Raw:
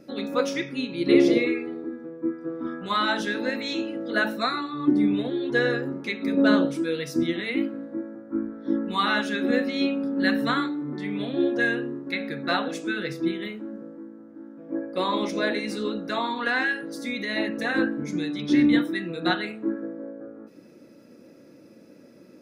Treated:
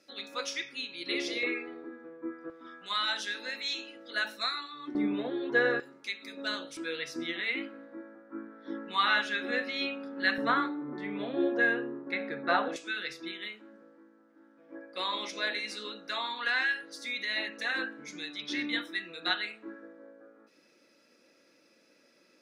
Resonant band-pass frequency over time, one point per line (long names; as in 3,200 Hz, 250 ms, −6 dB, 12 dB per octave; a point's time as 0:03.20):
resonant band-pass, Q 0.65
4,700 Hz
from 0:01.43 1,800 Hz
from 0:02.50 5,000 Hz
from 0:04.95 1,100 Hz
from 0:05.80 6,300 Hz
from 0:06.77 2,300 Hz
from 0:10.38 970 Hz
from 0:12.76 3,600 Hz